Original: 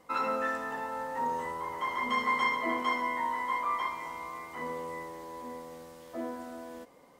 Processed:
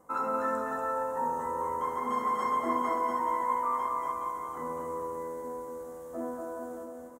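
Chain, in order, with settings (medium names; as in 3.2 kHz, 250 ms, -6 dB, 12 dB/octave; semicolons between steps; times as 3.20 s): high-order bell 3.2 kHz -15.5 dB; bouncing-ball echo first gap 240 ms, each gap 0.75×, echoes 5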